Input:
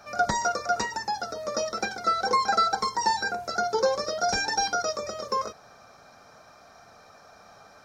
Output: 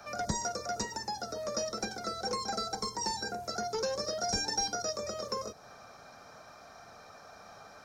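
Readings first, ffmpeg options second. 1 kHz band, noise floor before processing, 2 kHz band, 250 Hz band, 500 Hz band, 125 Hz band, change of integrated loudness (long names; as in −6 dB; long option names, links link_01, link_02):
−11.0 dB, −53 dBFS, −12.0 dB, −2.0 dB, −7.0 dB, −0.5 dB, −7.5 dB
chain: -filter_complex "[0:a]acrossover=split=210|580|4800[link_01][link_02][link_03][link_04];[link_02]asoftclip=type=tanh:threshold=-35dB[link_05];[link_03]acompressor=threshold=-41dB:ratio=6[link_06];[link_01][link_05][link_06][link_04]amix=inputs=4:normalize=0"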